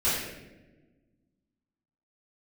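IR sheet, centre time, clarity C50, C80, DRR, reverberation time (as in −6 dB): 76 ms, 0.0 dB, 2.5 dB, −13.5 dB, 1.2 s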